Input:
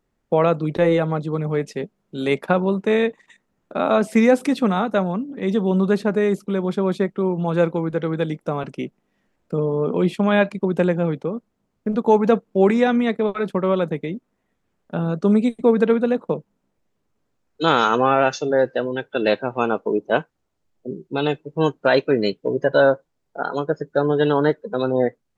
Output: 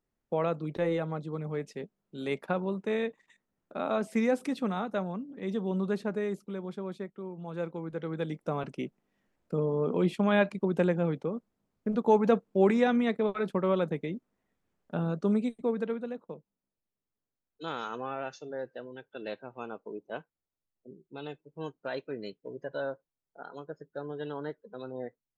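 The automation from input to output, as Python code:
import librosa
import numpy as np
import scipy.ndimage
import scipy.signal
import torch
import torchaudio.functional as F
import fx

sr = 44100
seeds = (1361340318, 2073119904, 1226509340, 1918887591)

y = fx.gain(x, sr, db=fx.line((6.08, -12.0), (7.31, -19.5), (8.54, -7.5), (15.02, -7.5), (16.3, -19.5)))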